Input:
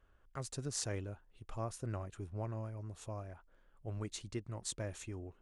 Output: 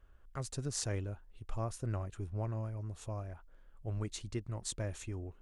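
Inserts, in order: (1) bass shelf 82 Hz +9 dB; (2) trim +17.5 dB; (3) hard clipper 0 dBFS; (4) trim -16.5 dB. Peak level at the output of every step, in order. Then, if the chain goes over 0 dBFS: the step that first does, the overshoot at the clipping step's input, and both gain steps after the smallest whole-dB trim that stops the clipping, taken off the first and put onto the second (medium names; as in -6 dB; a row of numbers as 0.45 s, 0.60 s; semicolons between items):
-21.5 dBFS, -4.0 dBFS, -4.0 dBFS, -20.5 dBFS; nothing clips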